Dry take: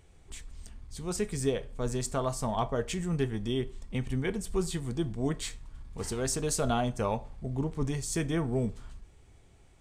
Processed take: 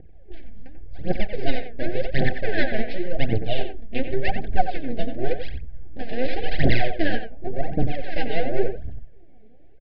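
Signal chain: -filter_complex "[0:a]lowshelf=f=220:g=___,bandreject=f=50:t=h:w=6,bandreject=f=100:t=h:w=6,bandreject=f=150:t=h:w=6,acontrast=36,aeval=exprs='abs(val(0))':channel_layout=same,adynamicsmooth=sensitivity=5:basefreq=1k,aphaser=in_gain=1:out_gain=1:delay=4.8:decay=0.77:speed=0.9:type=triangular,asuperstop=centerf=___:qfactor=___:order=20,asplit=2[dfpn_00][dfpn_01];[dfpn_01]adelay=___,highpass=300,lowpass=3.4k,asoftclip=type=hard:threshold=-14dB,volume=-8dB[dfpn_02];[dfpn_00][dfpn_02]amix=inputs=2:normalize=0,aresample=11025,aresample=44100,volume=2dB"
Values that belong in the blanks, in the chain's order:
-3, 1100, 1.5, 90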